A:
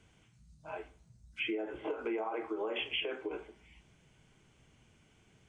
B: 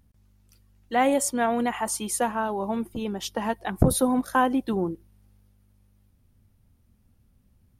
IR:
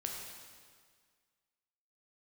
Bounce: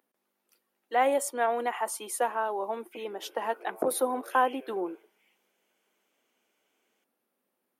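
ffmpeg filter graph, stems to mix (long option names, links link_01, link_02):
-filter_complex "[0:a]alimiter=level_in=11dB:limit=-24dB:level=0:latency=1:release=32,volume=-11dB,adelay=1550,volume=-7dB[link_01];[1:a]equalizer=frequency=6000:width=0.72:gain=-8,volume=-1.5dB[link_02];[link_01][link_02]amix=inputs=2:normalize=0,highpass=frequency=360:width=0.5412,highpass=frequency=360:width=1.3066"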